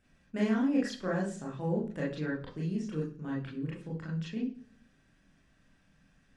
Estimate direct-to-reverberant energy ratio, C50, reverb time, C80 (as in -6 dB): -5.0 dB, 7.5 dB, 0.45 s, 12.5 dB